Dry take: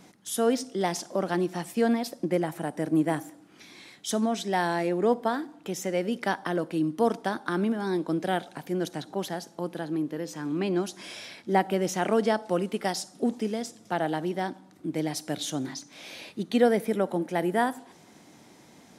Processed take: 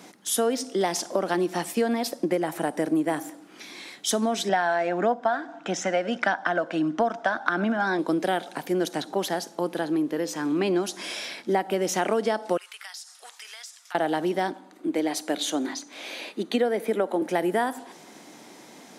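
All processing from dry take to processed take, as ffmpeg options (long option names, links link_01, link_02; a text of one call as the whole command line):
ffmpeg -i in.wav -filter_complex "[0:a]asettb=1/sr,asplit=3[link_01][link_02][link_03];[link_01]atrim=end=4.494[link_04];[link_02]atrim=start=4.49:end=7.99,asetpts=PTS-STARTPTS,afade=type=in:duration=0.004:curve=qsin,afade=type=out:start_time=3.496:duration=0.004:curve=qsin,highpass=130,equalizer=frequency=410:width_type=q:width=4:gain=-10,equalizer=frequency=690:width_type=q:width=4:gain=9,equalizer=frequency=1500:width_type=q:width=4:gain=10,equalizer=frequency=4500:width_type=q:width=4:gain=-6,lowpass=frequency=6700:width=0.5412,lowpass=frequency=6700:width=1.3066,aphaser=in_gain=1:out_gain=1:delay=2:decay=0.27:speed=1.6:type=triangular[link_05];[link_03]atrim=start=7.986[link_06];[link_04][link_05]acrossfade=duration=0.004:curve1=hsin:curve2=qsin[link_07];[link_07][link_06]acrossfade=duration=0.004:curve1=qsin:curve2=hsin,asettb=1/sr,asplit=3[link_08][link_09][link_10];[link_08]atrim=end=12.574[link_11];[link_09]atrim=start=12.57:end=13.95,asetpts=PTS-STARTPTS,afade=type=in:duration=0.004:curve=qsin,afade=type=out:start_time=1.376:duration=0.004:curve=qsin,highpass=frequency=1200:width=0.5412,highpass=frequency=1200:width=1.3066,acompressor=threshold=-45dB:ratio=6:attack=3.2:release=140:knee=1:detection=peak[link_12];[link_10]atrim=start=13.946[link_13];[link_11][link_12]acrossfade=duration=0.004:curve1=hsin:curve2=qsin[link_14];[link_14][link_13]acrossfade=duration=0.004:curve1=qsin:curve2=hsin,asettb=1/sr,asplit=3[link_15][link_16][link_17];[link_15]atrim=end=14.514[link_18];[link_16]atrim=start=14.51:end=17.22,asetpts=PTS-STARTPTS,afade=type=in:duration=0.004:curve=qsin,afade=type=out:start_time=2.706:duration=0.004:curve=qsin,highpass=frequency=210:width=0.5412,highpass=frequency=210:width=1.3066,highshelf=frequency=4500:gain=-5,bandreject=frequency=5400:width=10[link_19];[link_17]atrim=start=17.216[link_20];[link_18][link_19]acrossfade=duration=0.004:curve1=hsin:curve2=qsin[link_21];[link_21][link_20]acrossfade=duration=0.004:curve1=qsin:curve2=hsin,highpass=250,acompressor=threshold=-28dB:ratio=6,volume=7.5dB" out.wav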